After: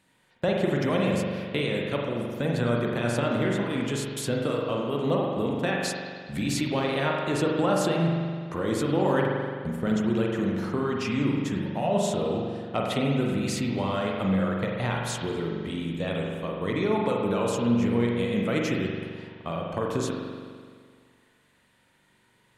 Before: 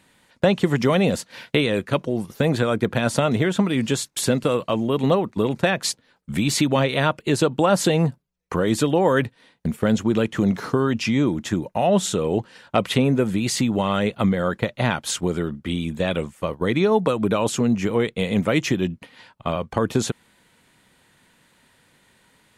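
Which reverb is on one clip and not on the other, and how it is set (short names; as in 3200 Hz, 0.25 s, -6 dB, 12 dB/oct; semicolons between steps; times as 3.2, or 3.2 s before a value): spring tank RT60 1.9 s, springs 42 ms, chirp 65 ms, DRR -1.5 dB; gain -9 dB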